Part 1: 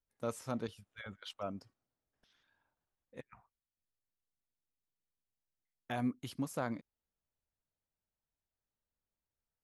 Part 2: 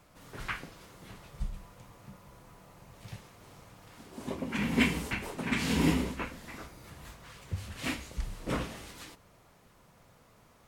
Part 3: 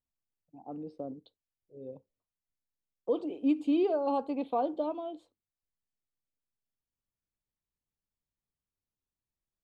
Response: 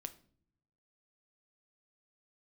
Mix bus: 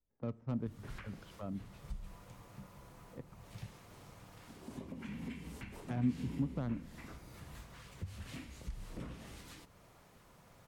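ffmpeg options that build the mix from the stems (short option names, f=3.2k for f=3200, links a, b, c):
-filter_complex "[0:a]adynamicsmooth=sensitivity=5.5:basefreq=800,volume=3dB,asplit=2[a][b];[b]volume=-4dB[c];[1:a]acompressor=threshold=-38dB:ratio=6,adelay=500,volume=-1dB[d];[3:a]atrim=start_sample=2205[e];[c][e]afir=irnorm=-1:irlink=0[f];[a][d][f]amix=inputs=3:normalize=0,acrossover=split=260[g][h];[h]acompressor=threshold=-57dB:ratio=2[i];[g][i]amix=inputs=2:normalize=0"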